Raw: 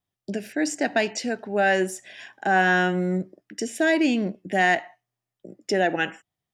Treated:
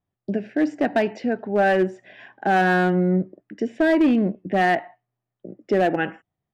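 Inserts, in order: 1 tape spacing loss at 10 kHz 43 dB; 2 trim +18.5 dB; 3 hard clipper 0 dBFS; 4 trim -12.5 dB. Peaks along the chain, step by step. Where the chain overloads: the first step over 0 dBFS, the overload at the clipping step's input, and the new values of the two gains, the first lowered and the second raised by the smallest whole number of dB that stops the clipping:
-13.5 dBFS, +5.0 dBFS, 0.0 dBFS, -12.5 dBFS; step 2, 5.0 dB; step 2 +13.5 dB, step 4 -7.5 dB

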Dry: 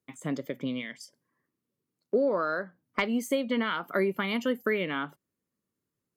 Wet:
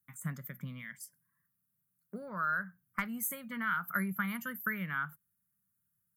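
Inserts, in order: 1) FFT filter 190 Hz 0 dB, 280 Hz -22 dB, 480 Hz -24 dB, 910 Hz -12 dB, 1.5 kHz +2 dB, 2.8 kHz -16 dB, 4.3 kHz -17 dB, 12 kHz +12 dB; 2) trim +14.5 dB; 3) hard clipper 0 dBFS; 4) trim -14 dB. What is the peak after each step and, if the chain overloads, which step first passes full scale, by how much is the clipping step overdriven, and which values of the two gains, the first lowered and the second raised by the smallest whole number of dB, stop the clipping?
-18.5 dBFS, -4.0 dBFS, -4.0 dBFS, -18.0 dBFS; nothing clips

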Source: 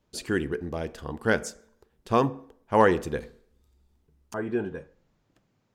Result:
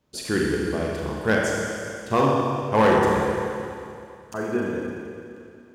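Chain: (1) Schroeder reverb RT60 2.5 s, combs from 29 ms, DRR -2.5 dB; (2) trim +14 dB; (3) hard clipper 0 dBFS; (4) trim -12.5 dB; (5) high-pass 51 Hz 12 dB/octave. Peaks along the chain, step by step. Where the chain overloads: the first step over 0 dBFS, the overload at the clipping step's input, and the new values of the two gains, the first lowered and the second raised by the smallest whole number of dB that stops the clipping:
-5.0 dBFS, +9.0 dBFS, 0.0 dBFS, -12.5 dBFS, -10.0 dBFS; step 2, 9.0 dB; step 2 +5 dB, step 4 -3.5 dB

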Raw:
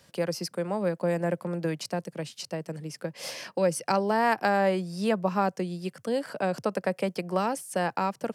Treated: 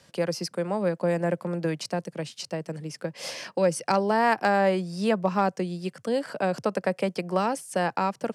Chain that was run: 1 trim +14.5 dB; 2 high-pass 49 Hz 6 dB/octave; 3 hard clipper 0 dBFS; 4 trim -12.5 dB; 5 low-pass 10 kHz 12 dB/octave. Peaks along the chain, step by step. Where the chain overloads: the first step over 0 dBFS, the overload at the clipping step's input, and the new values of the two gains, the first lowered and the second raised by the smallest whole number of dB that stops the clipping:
+3.0 dBFS, +3.0 dBFS, 0.0 dBFS, -12.5 dBFS, -12.0 dBFS; step 1, 3.0 dB; step 1 +11.5 dB, step 4 -9.5 dB

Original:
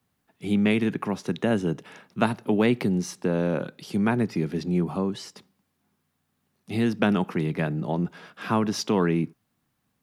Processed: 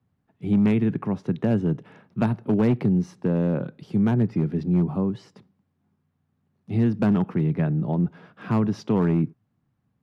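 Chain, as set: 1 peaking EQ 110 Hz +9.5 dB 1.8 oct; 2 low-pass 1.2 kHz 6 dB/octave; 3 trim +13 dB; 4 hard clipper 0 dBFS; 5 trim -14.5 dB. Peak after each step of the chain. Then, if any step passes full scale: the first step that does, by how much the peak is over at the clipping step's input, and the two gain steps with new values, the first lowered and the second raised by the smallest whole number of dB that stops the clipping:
-4.0 dBFS, -6.0 dBFS, +7.0 dBFS, 0.0 dBFS, -14.5 dBFS; step 3, 7.0 dB; step 3 +6 dB, step 5 -7.5 dB

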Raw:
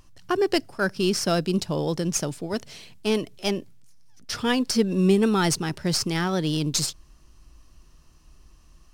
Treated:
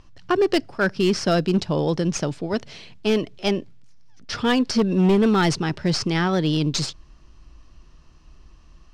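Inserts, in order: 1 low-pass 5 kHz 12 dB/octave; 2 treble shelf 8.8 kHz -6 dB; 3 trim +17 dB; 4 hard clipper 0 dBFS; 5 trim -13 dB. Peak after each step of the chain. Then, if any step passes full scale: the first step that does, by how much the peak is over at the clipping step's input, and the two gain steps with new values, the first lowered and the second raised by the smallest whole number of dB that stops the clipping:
-9.0 dBFS, -9.0 dBFS, +8.0 dBFS, 0.0 dBFS, -13.0 dBFS; step 3, 8.0 dB; step 3 +9 dB, step 5 -5 dB

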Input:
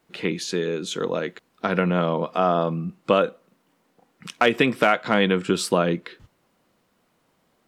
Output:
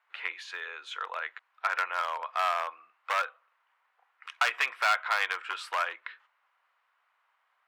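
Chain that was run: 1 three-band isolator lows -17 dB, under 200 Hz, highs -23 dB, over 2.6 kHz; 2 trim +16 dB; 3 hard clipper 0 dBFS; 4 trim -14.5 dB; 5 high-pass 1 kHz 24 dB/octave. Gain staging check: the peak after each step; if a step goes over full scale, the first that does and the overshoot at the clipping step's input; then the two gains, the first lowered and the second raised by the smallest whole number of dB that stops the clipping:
-6.0 dBFS, +10.0 dBFS, 0.0 dBFS, -14.5 dBFS, -12.0 dBFS; step 2, 10.0 dB; step 2 +6 dB, step 4 -4.5 dB

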